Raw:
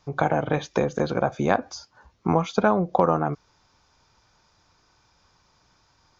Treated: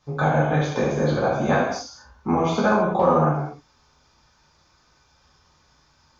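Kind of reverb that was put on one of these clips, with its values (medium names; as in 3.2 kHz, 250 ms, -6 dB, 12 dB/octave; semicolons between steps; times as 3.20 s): gated-style reverb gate 280 ms falling, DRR -7.5 dB; trim -5.5 dB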